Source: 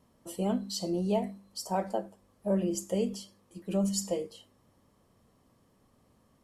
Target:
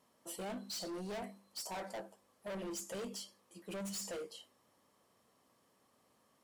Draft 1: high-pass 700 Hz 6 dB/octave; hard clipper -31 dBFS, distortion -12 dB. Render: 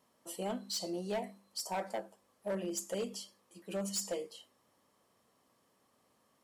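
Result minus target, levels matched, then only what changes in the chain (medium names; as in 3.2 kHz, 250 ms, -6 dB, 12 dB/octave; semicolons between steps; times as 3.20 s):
hard clipper: distortion -8 dB
change: hard clipper -40 dBFS, distortion -5 dB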